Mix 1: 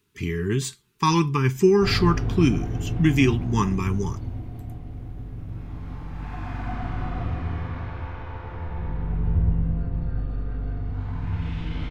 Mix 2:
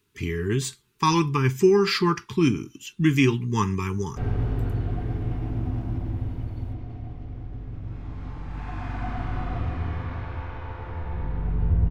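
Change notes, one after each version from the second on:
background: entry +2.35 s; master: add peaking EQ 180 Hz -4 dB 0.41 oct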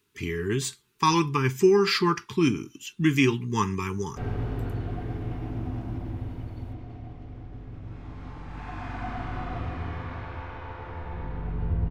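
master: add bass shelf 160 Hz -7 dB

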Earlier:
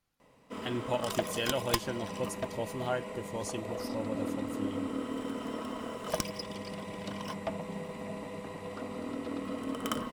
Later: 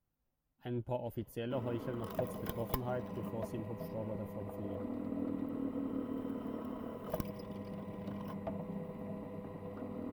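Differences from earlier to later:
background: entry +1.00 s; master: add FFT filter 120 Hz 0 dB, 800 Hz -7 dB, 8.1 kHz -24 dB, 16 kHz +1 dB

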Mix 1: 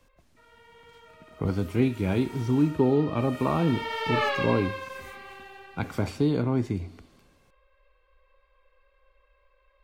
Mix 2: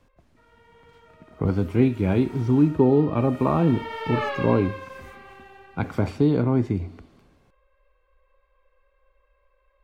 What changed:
speech +4.5 dB; master: add treble shelf 3.2 kHz -11.5 dB

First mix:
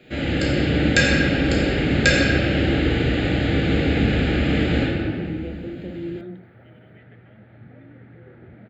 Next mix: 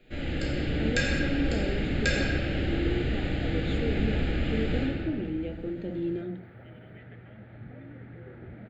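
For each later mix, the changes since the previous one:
first sound -10.5 dB; master: remove high-pass 77 Hz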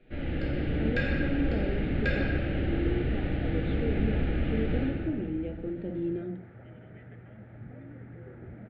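master: add distance through air 390 m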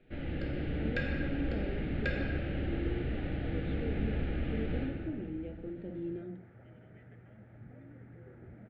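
speech -7.0 dB; first sound: send -6.5 dB; second sound -6.5 dB

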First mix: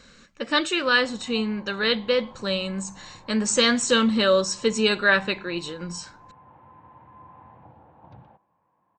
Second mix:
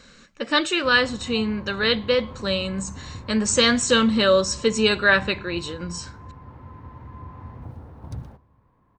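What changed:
background: remove cabinet simulation 220–3000 Hz, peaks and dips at 250 Hz -10 dB, 410 Hz -9 dB, 820 Hz +6 dB, 1.3 kHz -5 dB, 2 kHz -5 dB; reverb: on

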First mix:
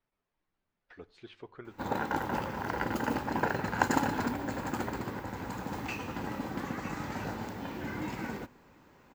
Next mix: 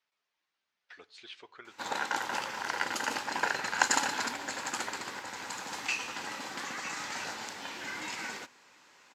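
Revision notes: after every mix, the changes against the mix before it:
master: add frequency weighting ITU-R 468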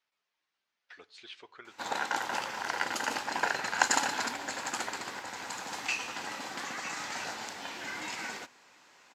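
background: add peaking EQ 700 Hz +4.5 dB 0.26 oct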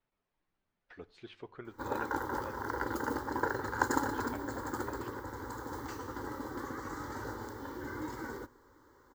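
background: add static phaser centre 690 Hz, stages 6; master: remove frequency weighting ITU-R 468

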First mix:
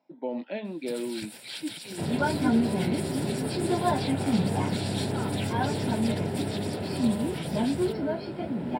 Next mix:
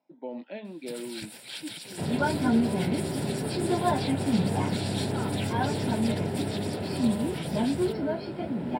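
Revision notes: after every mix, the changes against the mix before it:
speech -5.0 dB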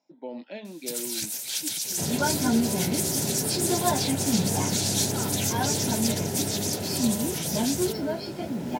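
master: remove boxcar filter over 7 samples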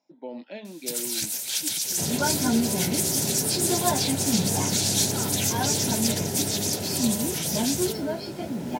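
reverb: on, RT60 0.50 s

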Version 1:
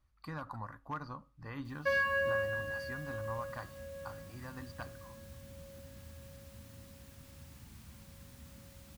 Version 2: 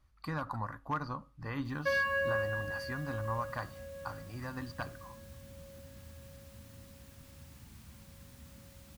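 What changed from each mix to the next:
speech +5.5 dB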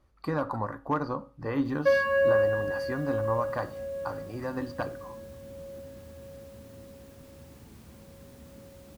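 speech: send +7.0 dB; master: add peaking EQ 430 Hz +14 dB 1.7 oct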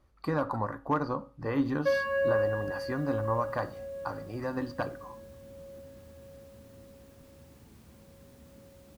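background -4.5 dB

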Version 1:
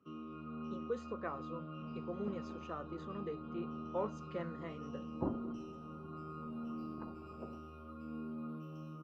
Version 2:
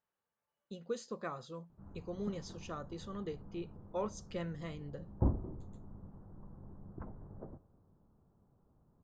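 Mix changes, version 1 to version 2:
first sound: muted; master: remove three-band isolator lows -21 dB, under 170 Hz, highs -16 dB, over 2.5 kHz

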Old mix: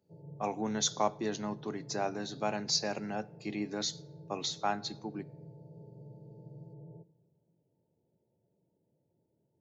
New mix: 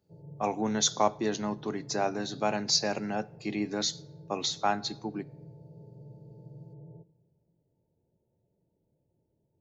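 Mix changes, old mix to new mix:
speech +4.5 dB; background: remove high-pass 120 Hz

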